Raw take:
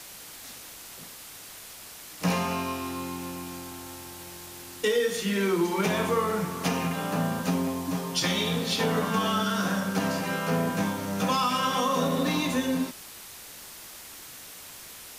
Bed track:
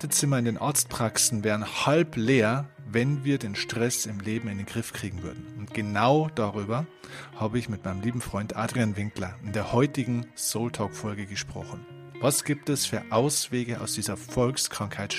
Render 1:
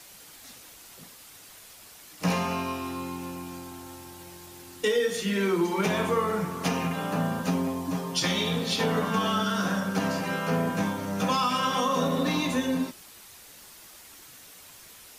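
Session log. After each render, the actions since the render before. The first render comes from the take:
broadband denoise 6 dB, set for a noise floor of −45 dBFS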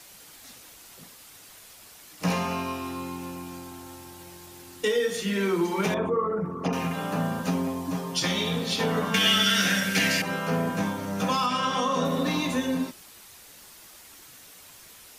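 0:05.94–0:06.73: spectral envelope exaggerated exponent 2
0:09.14–0:10.22: high shelf with overshoot 1,500 Hz +10.5 dB, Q 3
0:11.46–0:12.05: low-pass filter 8,200 Hz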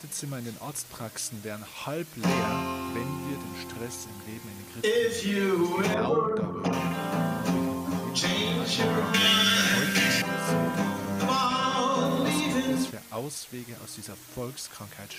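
mix in bed track −11 dB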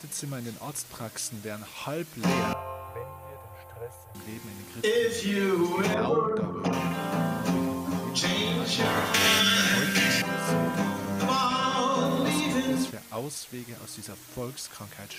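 0:02.53–0:04.15: drawn EQ curve 110 Hz 0 dB, 180 Hz −27 dB, 310 Hz −29 dB, 490 Hz +3 dB, 3,000 Hz −15 dB, 5,200 Hz −26 dB, 12,000 Hz −6 dB
0:08.84–0:09.39: ceiling on every frequency bin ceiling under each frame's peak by 16 dB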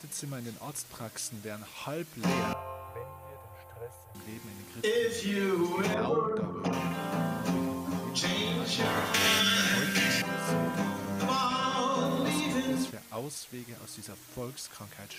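level −3.5 dB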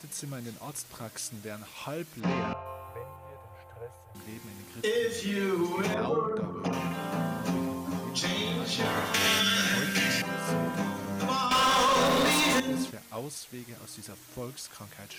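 0:02.20–0:02.66: high-frequency loss of the air 170 metres
0:03.16–0:04.16: high-shelf EQ 8,200 Hz −10.5 dB
0:11.51–0:12.60: mid-hump overdrive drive 26 dB, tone 7,000 Hz, clips at −17.5 dBFS

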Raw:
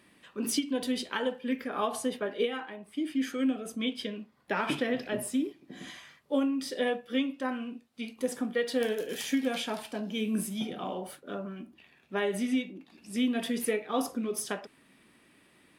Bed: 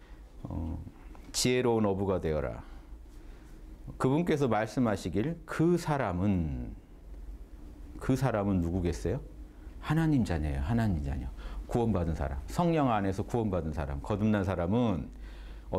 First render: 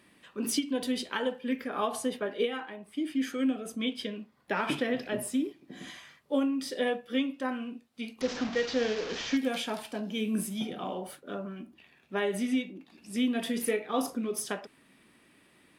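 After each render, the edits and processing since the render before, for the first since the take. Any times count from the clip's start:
0:08.21–0:09.37: linear delta modulator 32 kbit/s, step −31 dBFS
0:13.43–0:14.15: double-tracking delay 35 ms −11.5 dB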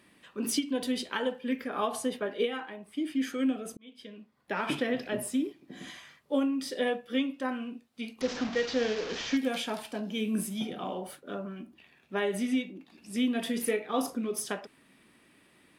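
0:03.77–0:04.77: fade in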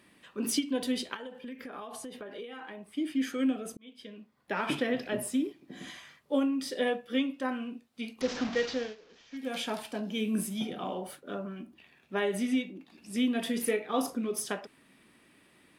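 0:01.14–0:02.87: downward compressor 10 to 1, threshold −38 dBFS
0:08.64–0:09.64: duck −22.5 dB, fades 0.33 s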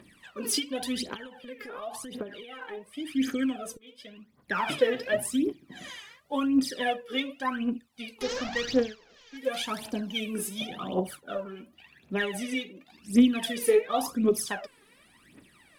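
phase shifter 0.91 Hz, delay 2.5 ms, feedback 77%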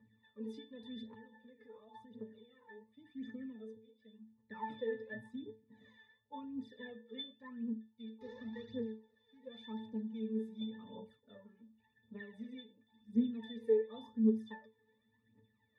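resonances in every octave A, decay 0.27 s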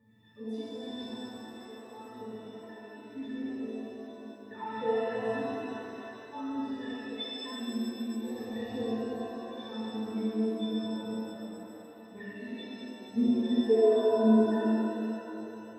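reverb with rising layers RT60 3 s, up +7 semitones, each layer −8 dB, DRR −9 dB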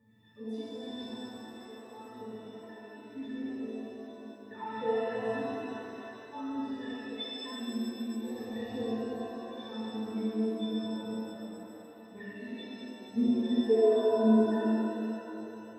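level −1 dB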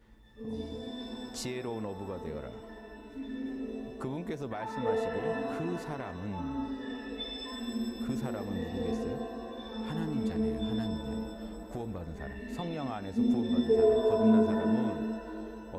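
mix in bed −10 dB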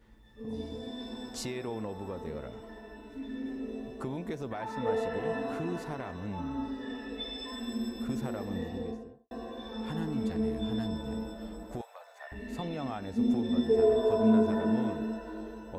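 0:08.55–0:09.31: fade out and dull
0:11.81–0:12.32: Butterworth high-pass 600 Hz 48 dB per octave

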